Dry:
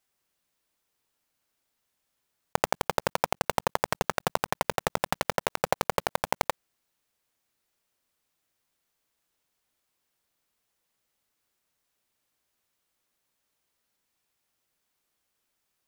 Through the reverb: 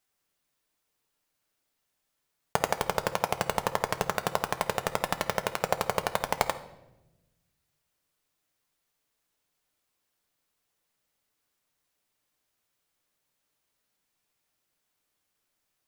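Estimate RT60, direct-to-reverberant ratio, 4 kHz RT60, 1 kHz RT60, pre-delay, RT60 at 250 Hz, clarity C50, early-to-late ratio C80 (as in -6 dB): 1.0 s, 8.5 dB, 0.75 s, 0.80 s, 7 ms, 1.5 s, 13.5 dB, 16.5 dB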